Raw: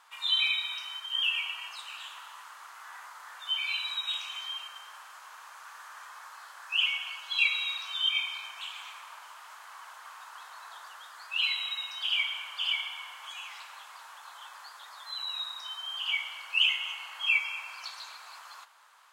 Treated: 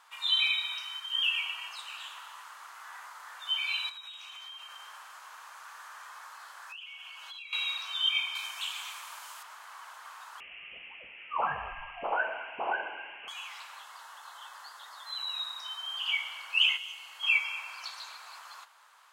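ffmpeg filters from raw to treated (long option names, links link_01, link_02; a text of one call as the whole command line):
ffmpeg -i in.wav -filter_complex "[0:a]asettb=1/sr,asplit=3[link_01][link_02][link_03];[link_01]atrim=end=0.814[link_04];[link_02]atrim=start=0.81:end=1.39,asetpts=PTS-STARTPTS,afade=type=in:duration=0.004:curve=qsin,afade=type=out:start_time=0.576:duration=0.004:curve=qsin,highpass=740[link_05];[link_03]atrim=start=1.386[link_06];[link_04][link_05]acrossfade=duration=0.004:curve1=hsin:curve2=qsin[link_07];[link_07][link_06]acrossfade=duration=0.004:curve1=qsin:curve2=hsin,asettb=1/sr,asplit=3[link_08][link_09][link_10];[link_08]atrim=end=3.894[link_11];[link_09]atrim=start=3.89:end=7.53,asetpts=PTS-STARTPTS,afade=type=in:duration=0.004:curve=qsin,afade=type=out:start_time=3.636:duration=0.004:curve=qsin,acompressor=threshold=-42dB:ratio=12:attack=3.2:release=140:knee=1:detection=peak[link_12];[link_10]atrim=start=7.526[link_13];[link_11][link_12]acrossfade=duration=0.004:curve1=hsin:curve2=qsin[link_14];[link_14][link_13]acrossfade=duration=0.004:curve1=qsin:curve2=hsin,asettb=1/sr,asplit=3[link_15][link_16][link_17];[link_15]atrim=end=8.354[link_18];[link_16]atrim=start=8.35:end=9.43,asetpts=PTS-STARTPTS,afade=type=in:duration=0.004:curve=qsin,afade=type=out:start_time=1.076:duration=0.004:curve=qsin,highshelf=frequency=4100:gain=11.5[link_19];[link_17]atrim=start=9.426[link_20];[link_18][link_19]acrossfade=duration=0.004:curve1=hsin:curve2=qsin[link_21];[link_21][link_20]acrossfade=duration=0.004:curve1=qsin:curve2=hsin,asettb=1/sr,asplit=3[link_22][link_23][link_24];[link_22]atrim=end=10.404[link_25];[link_23]atrim=start=10.4:end=13.28,asetpts=PTS-STARTPTS,afade=type=in:duration=0.004:curve=qsin,afade=type=out:start_time=2.876:duration=0.004:curve=qsin,lowpass=frequency=3200:width_type=q:width=0.5098,lowpass=frequency=3200:width_type=q:width=0.6013,lowpass=frequency=3200:width_type=q:width=0.9,lowpass=frequency=3200:width_type=q:width=2.563,afreqshift=-3800[link_26];[link_24]atrim=start=13.276[link_27];[link_25][link_26]acrossfade=duration=0.004:curve1=hsin:curve2=qsin[link_28];[link_28][link_27]acrossfade=duration=0.004:curve1=qsin:curve2=hsin,asettb=1/sr,asplit=3[link_29][link_30][link_31];[link_29]atrim=end=13.814[link_32];[link_30]atrim=start=13.81:end=15.07,asetpts=PTS-STARTPTS,afade=type=in:duration=0.004:curve=qsin,afade=type=out:start_time=1.256:duration=0.004:curve=qsin,bandreject=frequency=2400:width=7.4[link_33];[link_31]atrim=start=15.066[link_34];[link_32][link_33]acrossfade=duration=0.004:curve1=hsin:curve2=qsin[link_35];[link_35][link_34]acrossfade=duration=0.004:curve1=qsin:curve2=hsin,asettb=1/sr,asplit=3[link_36][link_37][link_38];[link_36]atrim=end=16.774[link_39];[link_37]atrim=start=16.77:end=17.23,asetpts=PTS-STARTPTS,afade=type=in:duration=0.004:curve=qsin,afade=type=out:start_time=0.456:duration=0.004:curve=qsin,acrossover=split=470|3000[link_40][link_41][link_42];[link_41]acompressor=threshold=-51dB:ratio=6:attack=3.2:release=140:knee=2.83:detection=peak[link_43];[link_40][link_43][link_42]amix=inputs=3:normalize=0[link_44];[link_38]atrim=start=17.226[link_45];[link_39][link_44]acrossfade=duration=0.004:curve1=hsin:curve2=qsin[link_46];[link_46][link_45]acrossfade=duration=0.004:curve1=qsin:curve2=hsin" out.wav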